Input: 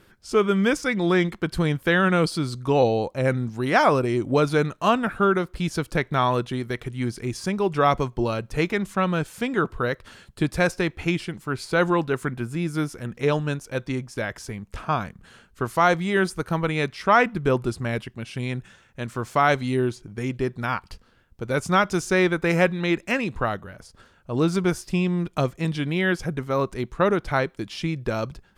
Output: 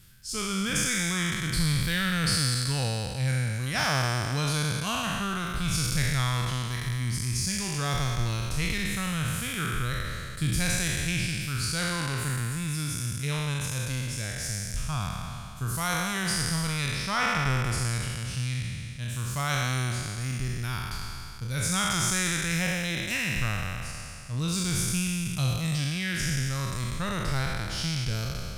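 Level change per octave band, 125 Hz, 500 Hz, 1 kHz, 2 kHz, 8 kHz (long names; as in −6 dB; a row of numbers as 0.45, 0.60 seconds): 0.0, −16.0, −9.0, −3.5, +11.0 decibels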